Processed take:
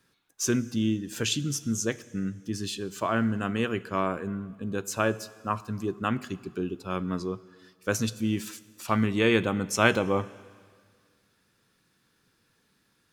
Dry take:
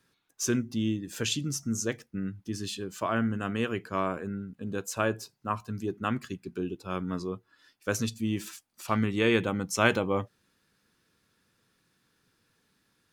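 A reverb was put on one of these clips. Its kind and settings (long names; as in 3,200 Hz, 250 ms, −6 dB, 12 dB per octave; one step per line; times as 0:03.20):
dense smooth reverb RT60 1.8 s, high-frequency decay 1×, DRR 17 dB
level +2 dB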